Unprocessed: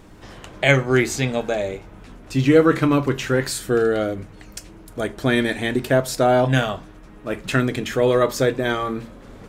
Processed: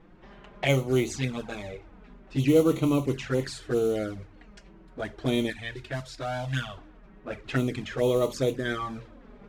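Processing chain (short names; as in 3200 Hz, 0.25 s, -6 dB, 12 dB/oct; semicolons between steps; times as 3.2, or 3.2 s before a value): modulation noise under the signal 21 dB; 5.5–6.77 bell 460 Hz -11.5 dB 2.5 oct; low-pass opened by the level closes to 2400 Hz, open at -13 dBFS; envelope flanger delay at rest 6.4 ms, full sweep at -15 dBFS; gain -5.5 dB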